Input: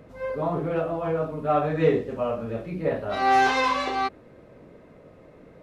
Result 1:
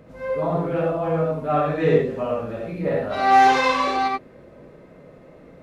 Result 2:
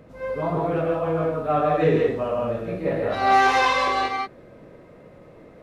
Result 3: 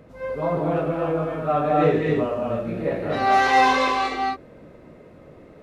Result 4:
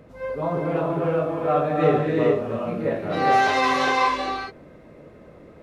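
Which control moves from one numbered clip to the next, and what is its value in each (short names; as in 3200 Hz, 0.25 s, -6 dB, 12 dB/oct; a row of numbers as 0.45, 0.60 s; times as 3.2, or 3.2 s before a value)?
non-linear reverb, gate: 0.11, 0.2, 0.29, 0.44 s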